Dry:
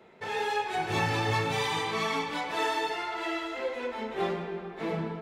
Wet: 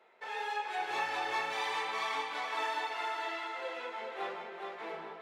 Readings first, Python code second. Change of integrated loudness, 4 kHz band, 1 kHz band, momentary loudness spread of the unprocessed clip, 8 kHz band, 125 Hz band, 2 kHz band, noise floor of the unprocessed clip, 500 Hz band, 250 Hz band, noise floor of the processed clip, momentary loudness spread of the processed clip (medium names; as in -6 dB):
-5.5 dB, -6.0 dB, -4.0 dB, 7 LU, -8.0 dB, under -30 dB, -4.0 dB, -44 dBFS, -9.5 dB, -16.5 dB, -48 dBFS, 8 LU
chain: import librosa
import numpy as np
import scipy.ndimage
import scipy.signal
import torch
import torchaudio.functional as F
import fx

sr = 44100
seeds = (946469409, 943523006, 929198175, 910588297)

p1 = scipy.signal.sosfilt(scipy.signal.butter(2, 680.0, 'highpass', fs=sr, output='sos'), x)
p2 = fx.high_shelf(p1, sr, hz=3800.0, db=-8.0)
p3 = p2 + fx.echo_feedback(p2, sr, ms=419, feedback_pct=29, wet_db=-4.5, dry=0)
y = F.gain(torch.from_numpy(p3), -3.5).numpy()